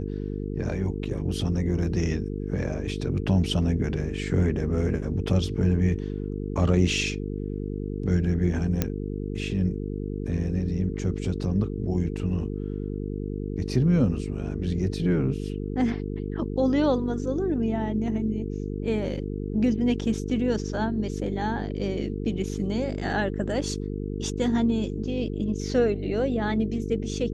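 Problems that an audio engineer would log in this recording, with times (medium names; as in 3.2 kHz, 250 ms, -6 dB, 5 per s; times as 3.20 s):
buzz 50 Hz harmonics 9 -31 dBFS
8.82 s: pop -9 dBFS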